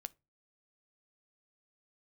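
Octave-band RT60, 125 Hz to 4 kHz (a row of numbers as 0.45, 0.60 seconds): 0.40, 0.35, 0.30, 0.25, 0.20, 0.15 seconds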